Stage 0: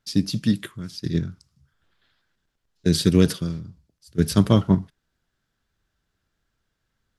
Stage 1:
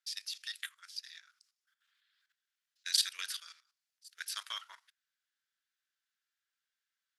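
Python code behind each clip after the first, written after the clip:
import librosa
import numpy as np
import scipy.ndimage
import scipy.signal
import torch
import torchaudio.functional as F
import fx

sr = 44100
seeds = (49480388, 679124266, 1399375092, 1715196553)

y = scipy.signal.sosfilt(scipy.signal.cheby2(4, 80, 250.0, 'highpass', fs=sr, output='sos'), x)
y = fx.level_steps(y, sr, step_db=13)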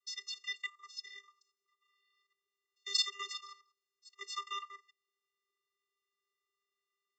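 y = fx.vocoder(x, sr, bands=32, carrier='square', carrier_hz=398.0)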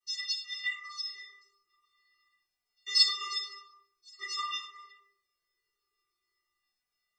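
y = fx.room_shoebox(x, sr, seeds[0], volume_m3=120.0, walls='mixed', distance_m=2.8)
y = fx.comb_cascade(y, sr, direction='falling', hz=0.47)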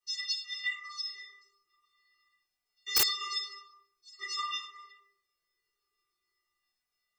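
y = (np.mod(10.0 ** (18.5 / 20.0) * x + 1.0, 2.0) - 1.0) / 10.0 ** (18.5 / 20.0)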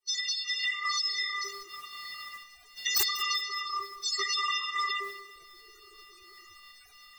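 y = fx.spec_quant(x, sr, step_db=30)
y = fx.recorder_agc(y, sr, target_db=-22.5, rise_db_per_s=73.0, max_gain_db=30)
y = fx.echo_feedback(y, sr, ms=191, feedback_pct=32, wet_db=-16.5)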